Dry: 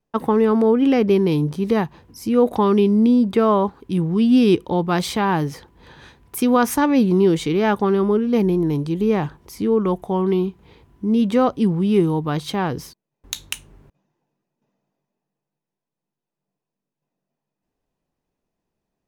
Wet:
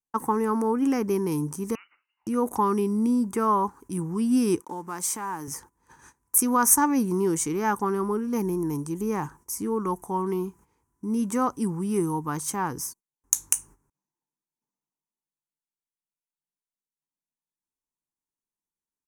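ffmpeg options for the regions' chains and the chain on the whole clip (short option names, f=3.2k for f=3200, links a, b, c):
-filter_complex "[0:a]asettb=1/sr,asplit=3[a][b][c];[a]atrim=end=1.754[d];[b]atrim=start=1.75:end=2.27,asetpts=PTS-STARTPTS,afade=t=in:d=0.004:c=qsin,afade=t=out:st=0.516:d=0.004:c=qsin,highpass=270,acompressor=threshold=-34dB:ratio=10:attack=3.2:release=140:knee=1:detection=peak,lowpass=f=2.6k:t=q:w=0.5098,lowpass=f=2.6k:t=q:w=0.6013,lowpass=f=2.6k:t=q:w=0.9,lowpass=f=2.6k:t=q:w=2.563,afreqshift=-3100[e];[c]atrim=start=2.266[f];[d][e]acrossfade=d=0.004:c1=hsin:c2=qsin[g];[g][f]acrossfade=d=0.004:c1=qsin:c2=hsin,asettb=1/sr,asplit=3[h][i][j];[h]atrim=end=4.604[k];[i]atrim=start=4.6:end=5.48,asetpts=PTS-STARTPTS,afade=t=in:d=0.004:c=qsin,afade=t=out:st=0.876:d=0.004:c=qsin,highpass=190,acompressor=threshold=-28dB:ratio=2:attack=3.2:release=140:knee=1:detection=peak,aeval=exprs='sgn(val(0))*max(abs(val(0))-0.00211,0)':c=same[l];[j]atrim=start=5.476[m];[k][l]acrossfade=d=0.004:c1=hsin:c2=qsin[n];[n][m]acrossfade=d=0.004:c1=qsin:c2=hsin,firequalizer=gain_entry='entry(190,0);entry(290,4);entry(640,-6);entry(900,10);entry(3700,-11);entry(6000,15)':delay=0.05:min_phase=1,agate=range=-14dB:threshold=-40dB:ratio=16:detection=peak,equalizer=f=9.1k:t=o:w=0.85:g=7.5,volume=-10dB"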